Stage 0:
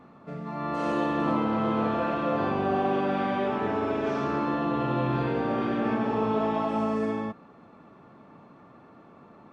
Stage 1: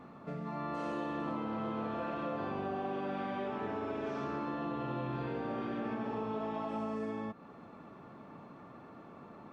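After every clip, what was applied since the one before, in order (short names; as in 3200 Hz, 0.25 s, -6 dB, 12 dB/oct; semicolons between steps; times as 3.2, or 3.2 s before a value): compressor 3:1, threshold -38 dBFS, peak gain reduction 12.5 dB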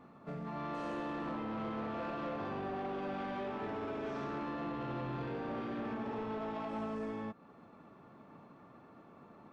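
soft clip -35 dBFS, distortion -14 dB; upward expander 1.5:1, over -53 dBFS; gain +1.5 dB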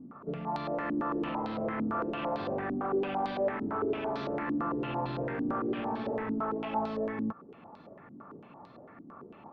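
stepped low-pass 8.9 Hz 270–4200 Hz; gain +3 dB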